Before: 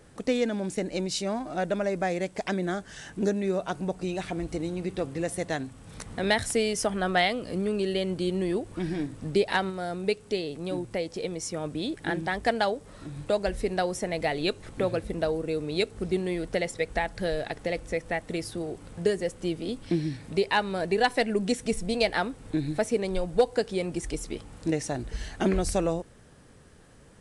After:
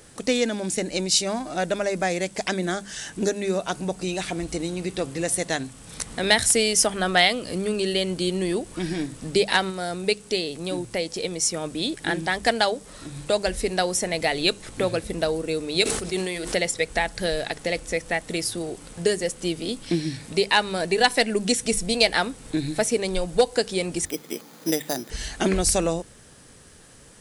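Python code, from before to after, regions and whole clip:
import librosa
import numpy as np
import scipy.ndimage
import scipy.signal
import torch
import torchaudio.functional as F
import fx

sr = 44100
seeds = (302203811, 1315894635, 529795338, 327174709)

y = fx.chain(x, sr, fx.low_shelf(hz=340.0, db=-9.0),
    fx.hum_notches(base_hz=50, count=7),
    fx.sustainer(db_per_s=38.0), at=(15.82, 16.54))
y = fx.chain(y, sr, fx.highpass(hz=180.0, slope=24),
    fx.resample_bad(factor=8, down='filtered', up='hold'), at=(24.05, 25.1))
y = fx.high_shelf(y, sr, hz=2900.0, db=12.0)
y = fx.hum_notches(y, sr, base_hz=50, count=4)
y = F.gain(torch.from_numpy(y), 2.5).numpy()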